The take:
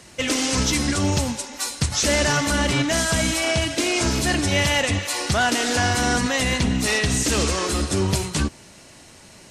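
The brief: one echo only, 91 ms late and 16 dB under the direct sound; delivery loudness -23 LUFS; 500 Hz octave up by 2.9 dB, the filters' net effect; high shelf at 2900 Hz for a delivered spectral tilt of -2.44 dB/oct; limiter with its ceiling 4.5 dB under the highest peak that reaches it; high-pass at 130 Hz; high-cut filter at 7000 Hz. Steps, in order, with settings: HPF 130 Hz; LPF 7000 Hz; bell 500 Hz +3.5 dB; high shelf 2900 Hz +6 dB; limiter -11 dBFS; echo 91 ms -16 dB; gain -2.5 dB

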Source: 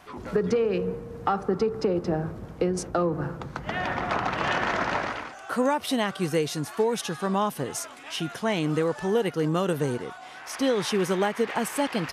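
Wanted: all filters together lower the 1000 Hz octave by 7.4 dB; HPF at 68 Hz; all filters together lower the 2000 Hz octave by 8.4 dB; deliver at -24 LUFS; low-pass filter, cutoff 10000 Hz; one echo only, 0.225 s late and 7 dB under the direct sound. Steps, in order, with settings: HPF 68 Hz; LPF 10000 Hz; bell 1000 Hz -8 dB; bell 2000 Hz -8 dB; echo 0.225 s -7 dB; gain +4.5 dB

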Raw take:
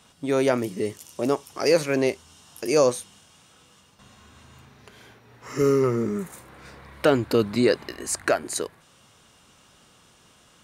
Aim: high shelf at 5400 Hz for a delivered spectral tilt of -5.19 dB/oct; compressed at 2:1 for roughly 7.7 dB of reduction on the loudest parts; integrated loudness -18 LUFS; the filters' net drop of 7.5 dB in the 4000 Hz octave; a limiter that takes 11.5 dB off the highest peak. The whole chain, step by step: bell 4000 Hz -8 dB; high shelf 5400 Hz -4 dB; compressor 2:1, threshold -29 dBFS; gain +18.5 dB; limiter -6.5 dBFS

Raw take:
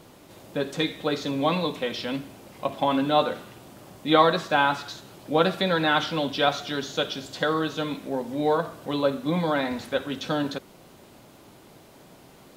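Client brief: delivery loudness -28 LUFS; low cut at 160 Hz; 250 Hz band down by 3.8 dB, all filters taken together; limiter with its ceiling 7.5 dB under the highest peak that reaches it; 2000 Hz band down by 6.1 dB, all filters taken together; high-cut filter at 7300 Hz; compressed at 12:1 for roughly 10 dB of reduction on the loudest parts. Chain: HPF 160 Hz; LPF 7300 Hz; bell 250 Hz -4 dB; bell 2000 Hz -9 dB; compressor 12:1, threshold -25 dBFS; gain +5.5 dB; limiter -15.5 dBFS

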